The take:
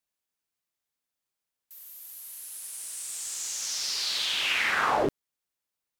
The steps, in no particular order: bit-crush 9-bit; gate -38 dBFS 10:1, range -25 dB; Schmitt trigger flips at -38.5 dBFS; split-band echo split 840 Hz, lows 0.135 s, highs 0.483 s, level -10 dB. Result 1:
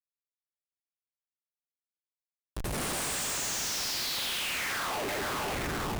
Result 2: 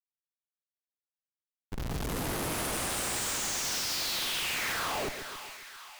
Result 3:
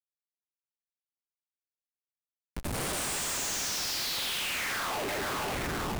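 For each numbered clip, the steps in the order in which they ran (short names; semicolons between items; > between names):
bit-crush > gate > split-band echo > Schmitt trigger; Schmitt trigger > gate > bit-crush > split-band echo; gate > split-band echo > Schmitt trigger > bit-crush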